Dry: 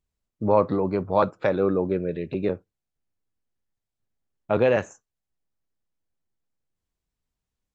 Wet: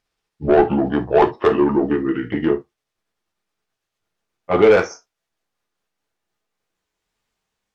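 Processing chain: pitch bend over the whole clip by -6.5 st ending unshifted; overdrive pedal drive 19 dB, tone 3.5 kHz, clips at -7 dBFS; gated-style reverb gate 90 ms falling, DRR 5 dB; trim +2 dB

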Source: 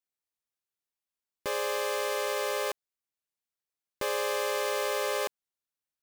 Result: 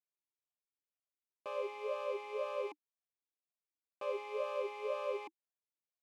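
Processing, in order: talking filter a-u 2 Hz; trim +1 dB

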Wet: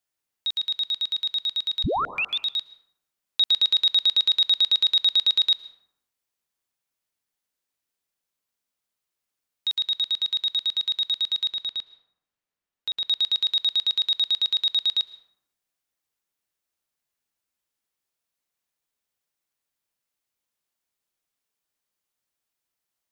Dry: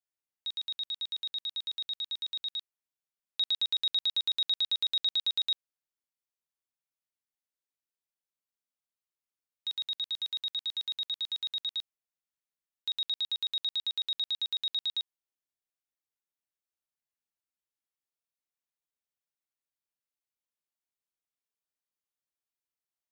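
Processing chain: 1.84 s: tape start 0.55 s; 11.48–13.05 s: treble shelf 4.2 kHz -11 dB; plate-style reverb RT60 0.8 s, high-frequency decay 0.5×, pre-delay 100 ms, DRR 15 dB; trim +9 dB

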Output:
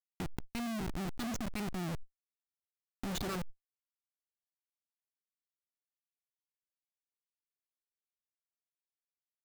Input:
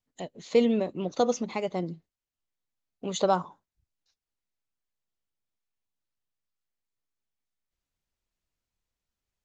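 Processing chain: local Wiener filter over 41 samples; elliptic band-stop 360–1200 Hz, stop band 40 dB; speakerphone echo 190 ms, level -22 dB; gain riding within 5 dB 0.5 s; bass shelf 77 Hz -6.5 dB; Schmitt trigger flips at -40.5 dBFS; level flattener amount 100%; trim +2.5 dB

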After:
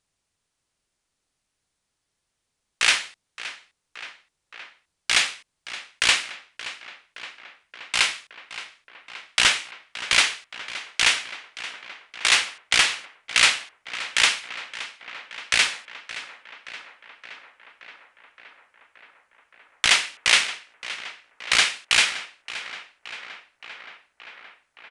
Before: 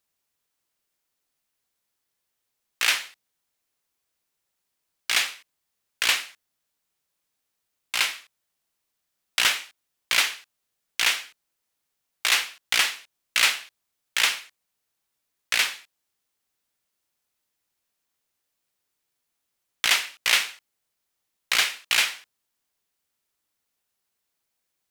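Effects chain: bass shelf 160 Hz +10.5 dB; on a send: tape echo 572 ms, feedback 82%, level -13 dB, low-pass 3.6 kHz; on the sum: resampled via 22.05 kHz; trim +3 dB

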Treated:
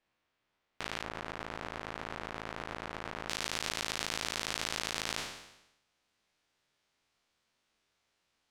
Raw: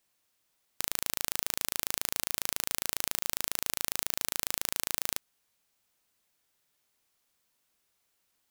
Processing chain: spectral sustain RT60 0.90 s; low-pass 2.7 kHz 12 dB/octave, from 1.03 s 1.5 kHz, from 3.29 s 4.9 kHz

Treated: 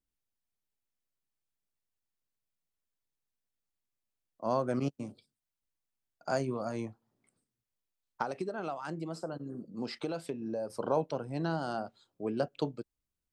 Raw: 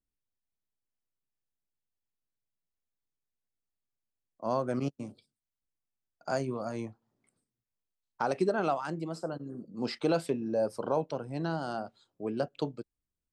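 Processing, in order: 8.22–10.70 s: compression, threshold -33 dBFS, peak gain reduction 10.5 dB

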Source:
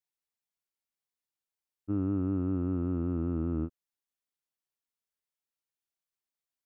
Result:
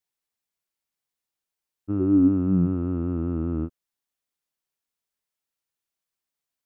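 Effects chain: 1.99–2.73 s: peaking EQ 380 Hz -> 150 Hz +14 dB 0.28 oct; trim +4.5 dB

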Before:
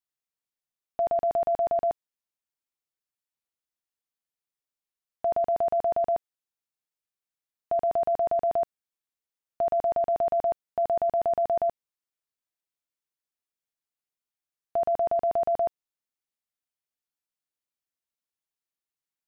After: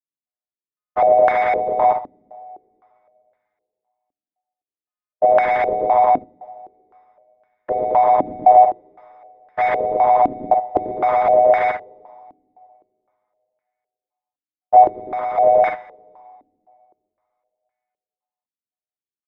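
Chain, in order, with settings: partials quantised in pitch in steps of 3 st; waveshaping leveller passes 5; 14.84–15.38 s: compression 5:1, threshold -28 dBFS, peak gain reduction 7.5 dB; on a send: early reflections 45 ms -10.5 dB, 55 ms -8 dB; on the sum: two-slope reverb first 0.3 s, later 2.6 s, from -17 dB, DRR 11 dB; step-sequenced low-pass 3.9 Hz 280–1600 Hz; trim +1 dB

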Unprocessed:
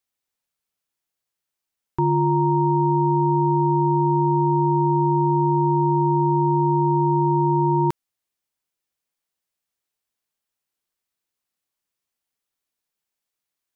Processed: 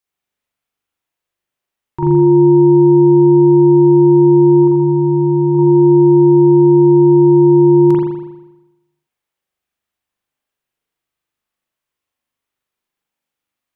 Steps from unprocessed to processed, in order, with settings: 4.63–5.55 s: dynamic bell 490 Hz, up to -8 dB, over -36 dBFS, Q 0.88; spring tank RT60 1 s, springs 40 ms, chirp 75 ms, DRR -6.5 dB; trim -1 dB

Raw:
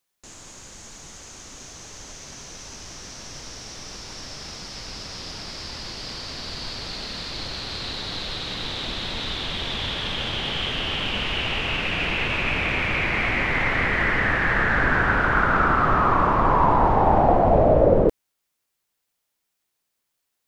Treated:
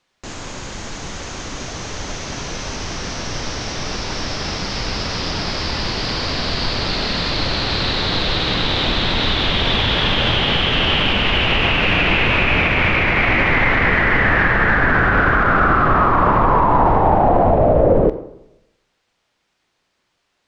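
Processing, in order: 14.97–15.91 s: band-stop 920 Hz, Q 8.8; in parallel at +2.5 dB: compression, threshold -32 dBFS, peak gain reduction 18.5 dB; on the sum: peak limiter -14 dBFS, peak gain reduction 10.5 dB; distance through air 140 m; reverberation RT60 0.90 s, pre-delay 10 ms, DRR 10.5 dB; trim +8.5 dB

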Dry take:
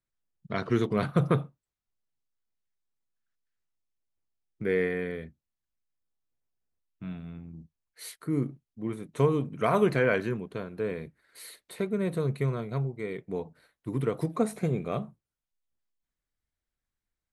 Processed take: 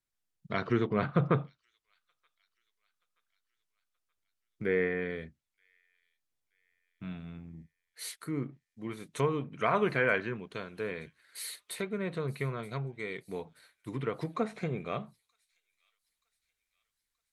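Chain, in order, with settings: low-pass that closes with the level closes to 2.4 kHz, closed at -25 dBFS; tilt shelf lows -3 dB, about 1.2 kHz, from 8.16 s lows -7 dB; feedback echo behind a high-pass 927 ms, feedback 49%, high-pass 4.4 kHz, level -19 dB

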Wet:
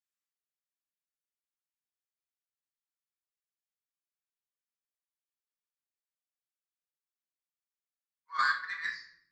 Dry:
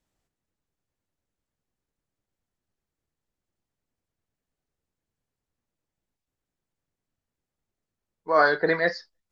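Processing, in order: elliptic high-pass 1.1 kHz, stop band 40 dB; treble shelf 5 kHz +6 dB; Chebyshev shaper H 3 -17 dB, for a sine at -12 dBFS; simulated room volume 170 m³, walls mixed, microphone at 1.2 m; upward expansion 1.5:1, over -34 dBFS; trim -5.5 dB

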